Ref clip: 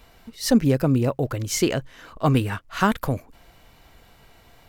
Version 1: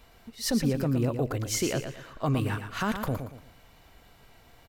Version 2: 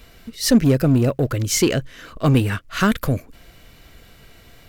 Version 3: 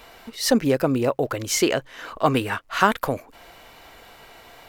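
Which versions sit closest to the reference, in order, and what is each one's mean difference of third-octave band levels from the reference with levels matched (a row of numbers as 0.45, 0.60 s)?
2, 3, 1; 2.0, 4.0, 6.0 dB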